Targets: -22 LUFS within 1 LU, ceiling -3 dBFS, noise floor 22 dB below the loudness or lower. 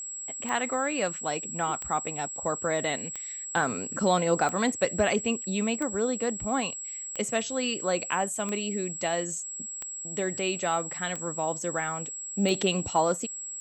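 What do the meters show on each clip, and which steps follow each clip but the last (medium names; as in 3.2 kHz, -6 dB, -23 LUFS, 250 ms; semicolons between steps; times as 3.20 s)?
clicks found 10; steady tone 7.7 kHz; tone level -35 dBFS; loudness -28.5 LUFS; peak level -10.5 dBFS; loudness target -22.0 LUFS
-> de-click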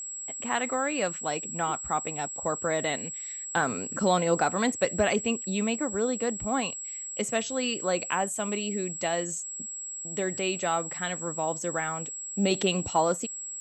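clicks found 0; steady tone 7.7 kHz; tone level -35 dBFS
-> band-stop 7.7 kHz, Q 30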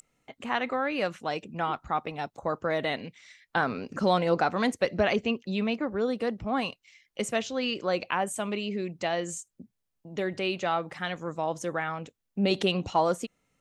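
steady tone not found; loudness -29.5 LUFS; peak level -11.0 dBFS; loudness target -22.0 LUFS
-> trim +7.5 dB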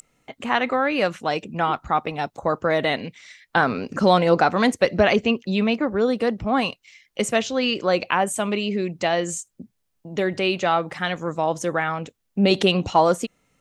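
loudness -22.0 LUFS; peak level -3.5 dBFS; noise floor -73 dBFS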